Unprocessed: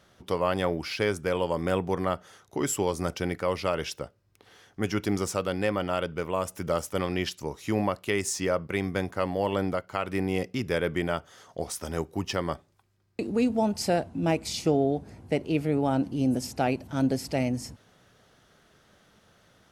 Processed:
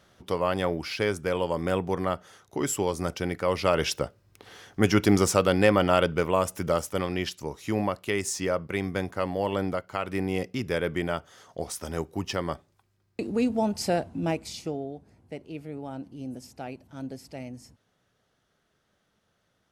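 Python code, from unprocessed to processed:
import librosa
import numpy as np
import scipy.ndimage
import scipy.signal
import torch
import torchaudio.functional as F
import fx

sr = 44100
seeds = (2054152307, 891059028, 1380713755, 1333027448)

y = fx.gain(x, sr, db=fx.line((3.33, 0.0), (3.91, 7.0), (6.07, 7.0), (7.09, -0.5), (14.17, -0.5), (14.92, -12.0)))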